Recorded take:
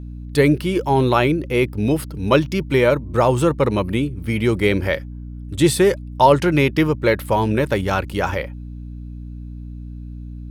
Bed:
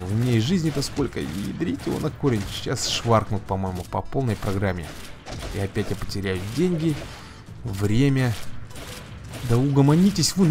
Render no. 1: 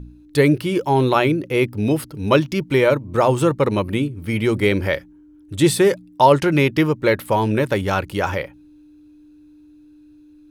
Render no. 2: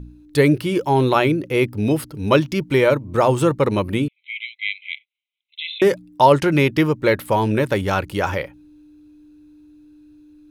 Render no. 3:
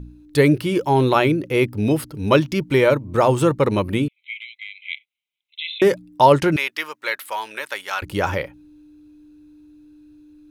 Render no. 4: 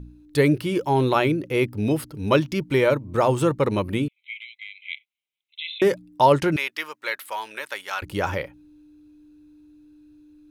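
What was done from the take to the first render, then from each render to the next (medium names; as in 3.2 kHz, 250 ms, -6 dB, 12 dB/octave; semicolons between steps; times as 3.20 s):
de-hum 60 Hz, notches 4
4.08–5.82 s: brick-wall FIR band-pass 2–4.1 kHz
4.33–4.82 s: compression, threshold -31 dBFS; 6.56–8.02 s: high-pass 1.2 kHz
trim -3.5 dB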